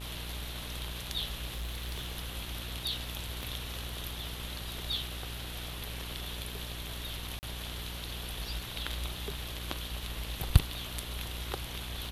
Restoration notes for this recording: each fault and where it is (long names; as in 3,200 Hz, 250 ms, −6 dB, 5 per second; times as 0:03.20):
mains buzz 60 Hz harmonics 39 −42 dBFS
0:01.53–0:02.18: clipping −33 dBFS
0:03.43: click
0:07.39–0:07.43: drop-out 39 ms